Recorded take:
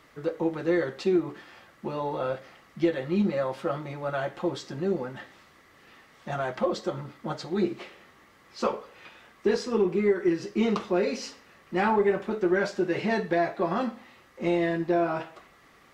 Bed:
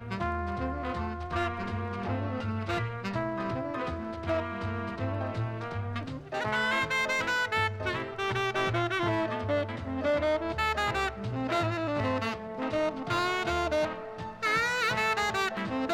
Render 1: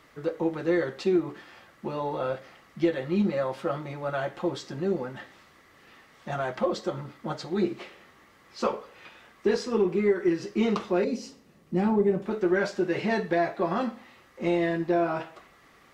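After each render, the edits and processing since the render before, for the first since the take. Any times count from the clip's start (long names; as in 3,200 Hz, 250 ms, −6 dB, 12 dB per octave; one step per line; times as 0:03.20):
0:11.04–0:12.26: drawn EQ curve 110 Hz 0 dB, 160 Hz +8 dB, 520 Hz −3 dB, 1,600 Hz −13 dB, 8,700 Hz −3 dB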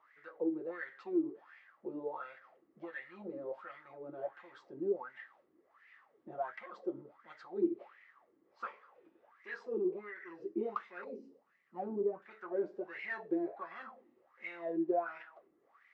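soft clipping −16 dBFS, distortion −21 dB
LFO wah 1.4 Hz 310–2,100 Hz, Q 6.8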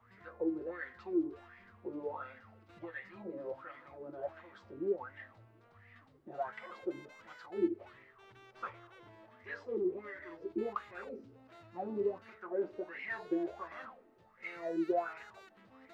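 mix in bed −29 dB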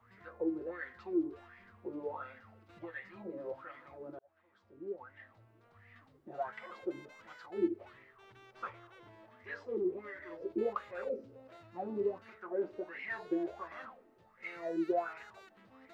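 0:04.19–0:05.91: fade in
0:10.30–0:11.57: parametric band 540 Hz +13 dB 0.34 octaves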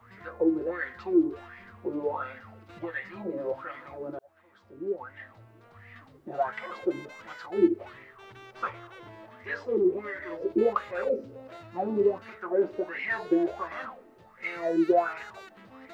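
level +10 dB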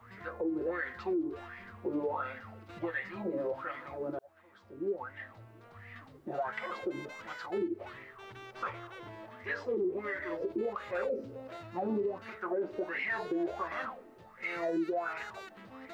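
downward compressor, threshold −26 dBFS, peak gain reduction 11 dB
brickwall limiter −25.5 dBFS, peak gain reduction 7 dB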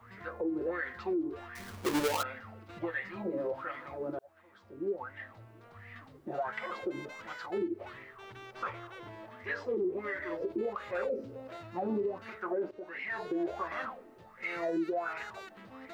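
0:01.55–0:02.23: each half-wave held at its own peak
0:12.71–0:13.38: fade in, from −12.5 dB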